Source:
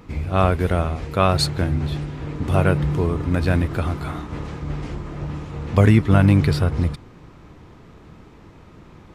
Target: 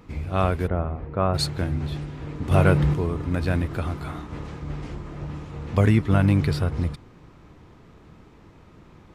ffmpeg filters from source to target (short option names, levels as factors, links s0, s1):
-filter_complex "[0:a]asplit=3[s0][s1][s2];[s0]afade=t=out:st=0.66:d=0.02[s3];[s1]lowpass=1300,afade=t=in:st=0.66:d=0.02,afade=t=out:st=1.33:d=0.02[s4];[s2]afade=t=in:st=1.33:d=0.02[s5];[s3][s4][s5]amix=inputs=3:normalize=0,asettb=1/sr,asplit=3[s6][s7][s8];[s6]atrim=end=2.514[s9];[s7]atrim=start=2.51:end=2.94,asetpts=PTS-STARTPTS,afade=t=in:d=0.004:c=qsin,afade=t=out:st=0.426:d=0.004:c=qsin,acontrast=52[s10];[s8]atrim=start=2.936[s11];[s9][s10]acrossfade=d=0.004:c1=hsin:c2=qsin[s12];[s12][s11]acrossfade=d=0.004:c1=qsin:c2=hsin,volume=0.596"